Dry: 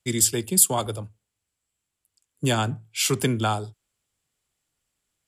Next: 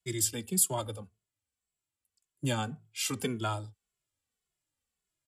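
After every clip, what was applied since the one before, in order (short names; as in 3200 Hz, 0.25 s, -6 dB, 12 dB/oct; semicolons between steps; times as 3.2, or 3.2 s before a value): endless flanger 2.3 ms -1.8 Hz; gain -6 dB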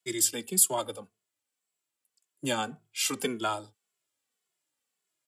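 HPF 270 Hz 12 dB/oct; gain +4 dB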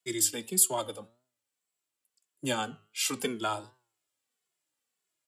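flange 1.6 Hz, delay 7.7 ms, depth 2.2 ms, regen +89%; gain +3.5 dB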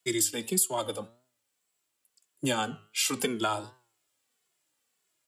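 compressor 3:1, threshold -33 dBFS, peak gain reduction 11.5 dB; gain +7 dB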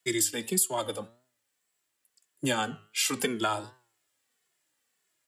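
bell 1800 Hz +6 dB 0.33 oct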